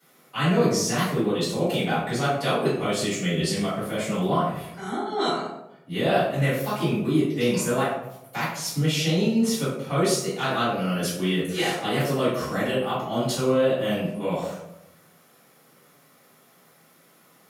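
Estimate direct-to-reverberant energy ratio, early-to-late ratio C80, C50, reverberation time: −14.0 dB, 5.0 dB, 1.0 dB, 0.90 s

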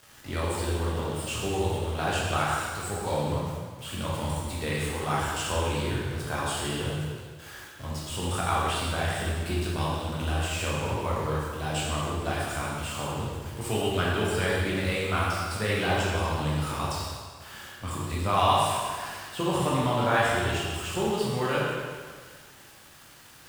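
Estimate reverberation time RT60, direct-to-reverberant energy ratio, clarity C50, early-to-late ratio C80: 1.7 s, −6.5 dB, −1.5 dB, 0.5 dB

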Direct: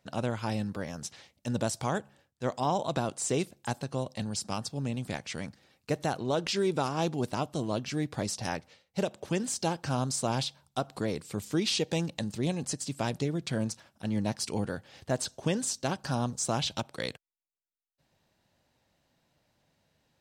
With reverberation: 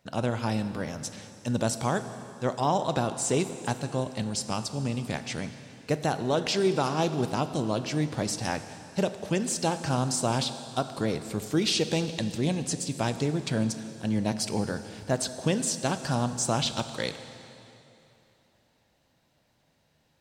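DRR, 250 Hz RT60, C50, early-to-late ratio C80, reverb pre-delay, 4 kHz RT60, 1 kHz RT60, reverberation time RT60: 10.0 dB, 2.9 s, 11.0 dB, 11.5 dB, 7 ms, 2.8 s, 3.0 s, 3.0 s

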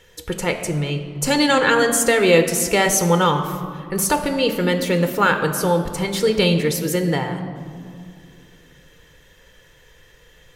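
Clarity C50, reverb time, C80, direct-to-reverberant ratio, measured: 9.0 dB, 2.2 s, 10.0 dB, 6.0 dB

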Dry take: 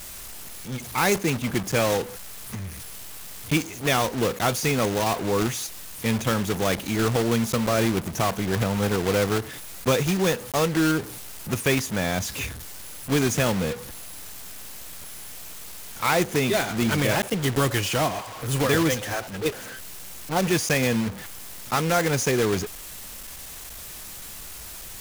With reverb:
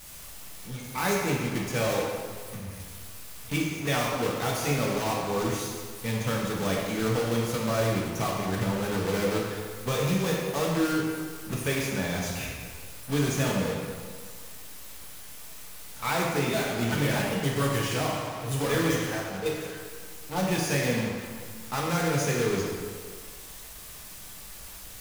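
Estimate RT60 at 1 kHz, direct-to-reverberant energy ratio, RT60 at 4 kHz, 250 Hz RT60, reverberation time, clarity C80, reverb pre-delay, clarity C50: 1.8 s, −3.5 dB, 1.3 s, 1.7 s, 1.8 s, 2.0 dB, 3 ms, 0.5 dB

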